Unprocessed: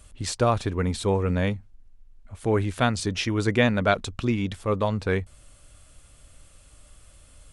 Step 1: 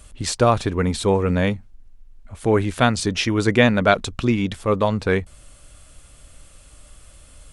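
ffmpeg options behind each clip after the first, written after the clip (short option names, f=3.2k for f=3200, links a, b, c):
-af "equalizer=f=97:w=3.6:g=-4,volume=5.5dB"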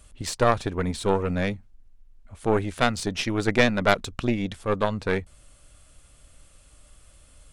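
-af "aeval=exprs='0.891*(cos(1*acos(clip(val(0)/0.891,-1,1)))-cos(1*PI/2))+0.282*(cos(2*acos(clip(val(0)/0.891,-1,1)))-cos(2*PI/2))+0.0794*(cos(6*acos(clip(val(0)/0.891,-1,1)))-cos(6*PI/2))+0.0282*(cos(7*acos(clip(val(0)/0.891,-1,1)))-cos(7*PI/2))+0.0251*(cos(8*acos(clip(val(0)/0.891,-1,1)))-cos(8*PI/2))':c=same,volume=-4.5dB"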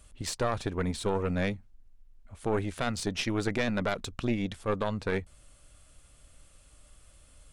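-af "alimiter=limit=-13dB:level=0:latency=1:release=17,volume=-3.5dB"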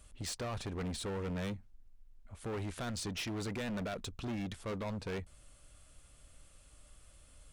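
-af "aeval=exprs='0.158*(cos(1*acos(clip(val(0)/0.158,-1,1)))-cos(1*PI/2))+0.02*(cos(4*acos(clip(val(0)/0.158,-1,1)))-cos(4*PI/2))':c=same,volume=33dB,asoftclip=hard,volume=-33dB,volume=-2.5dB"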